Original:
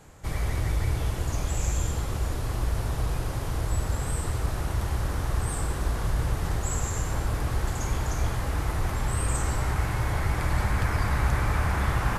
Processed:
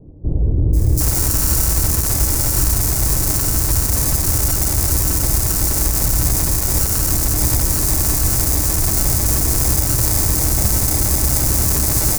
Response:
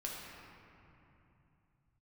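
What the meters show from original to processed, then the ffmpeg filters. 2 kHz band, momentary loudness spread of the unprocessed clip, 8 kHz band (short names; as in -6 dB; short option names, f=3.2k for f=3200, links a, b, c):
+3.0 dB, 4 LU, +20.5 dB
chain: -filter_complex "[0:a]equalizer=f=300:t=o:w=0.3:g=7,adynamicsmooth=sensitivity=7:basefreq=2.4k,acrusher=samples=31:mix=1:aa=0.000001,aexciter=amount=12.1:drive=4.3:freq=4.8k,acrossover=split=490|4400[a][b][c];[c]adelay=730[d];[b]adelay=760[e];[a][e][d]amix=inputs=3:normalize=0,alimiter=level_in=12.5dB:limit=-1dB:release=50:level=0:latency=1,volume=-1dB"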